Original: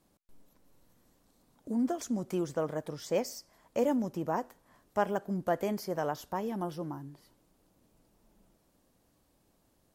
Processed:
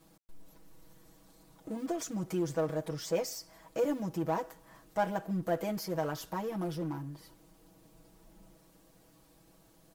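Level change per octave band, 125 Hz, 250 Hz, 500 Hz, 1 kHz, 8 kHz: +2.0, −2.0, −1.0, −2.0, +2.0 decibels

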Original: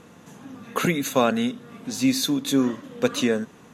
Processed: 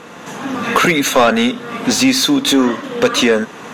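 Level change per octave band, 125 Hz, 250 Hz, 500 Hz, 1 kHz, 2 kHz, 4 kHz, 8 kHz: +4.5, +8.0, +9.5, +12.0, +14.0, +13.0, +11.0 decibels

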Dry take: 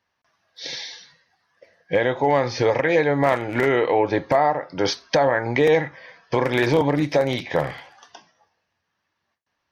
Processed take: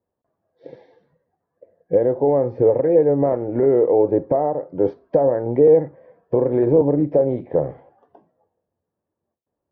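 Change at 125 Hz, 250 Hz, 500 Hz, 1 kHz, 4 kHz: +0.5 dB, +3.0 dB, +4.0 dB, −6.0 dB, below −35 dB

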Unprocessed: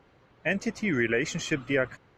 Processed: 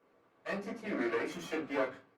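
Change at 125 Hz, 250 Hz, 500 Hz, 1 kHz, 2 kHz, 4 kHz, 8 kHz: −15.5, −8.5, −6.0, 0.0, −11.0, −11.5, −15.5 decibels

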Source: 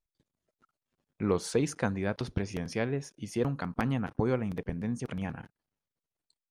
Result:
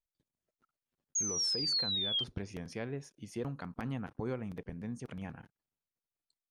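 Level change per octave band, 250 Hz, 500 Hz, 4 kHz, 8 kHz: −9.0, −10.5, +14.0, +7.5 decibels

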